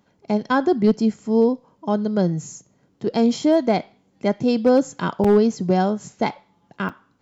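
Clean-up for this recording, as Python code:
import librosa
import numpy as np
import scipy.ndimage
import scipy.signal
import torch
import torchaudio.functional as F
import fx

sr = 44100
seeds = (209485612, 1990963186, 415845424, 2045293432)

y = fx.fix_declip(x, sr, threshold_db=-8.5)
y = fx.fix_interpolate(y, sr, at_s=(5.24, 6.89), length_ms=5.1)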